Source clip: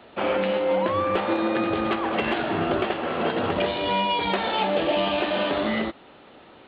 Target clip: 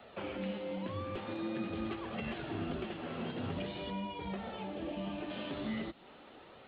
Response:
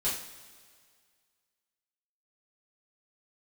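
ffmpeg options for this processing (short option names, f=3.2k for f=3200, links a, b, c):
-filter_complex "[0:a]acrossover=split=2700[a][b];[b]acompressor=threshold=-48dB:ratio=4:attack=1:release=60[c];[a][c]amix=inputs=2:normalize=0,asettb=1/sr,asplit=3[d][e][f];[d]atrim=end=3.904[g];[e]atrim=start=3.9:end=5.3,asetpts=PTS-STARTPTS,afade=t=in:d=0.004:c=qsin,afade=t=out:st=1.396:d=0.004:c=qsin,highshelf=f=2.6k:g=-11[h];[f]atrim=start=5.296[i];[g][h]acrossfade=d=0.004:c1=hsin:c2=qsin[j];[j][i]acrossfade=d=0.004:c1=qsin:c2=hsin,acrossover=split=260|3000[k][l][m];[l]acompressor=threshold=-38dB:ratio=6[n];[k][n][m]amix=inputs=3:normalize=0,flanger=delay=1.5:depth=6.4:regen=-45:speed=0.45:shape=sinusoidal,volume=-2dB"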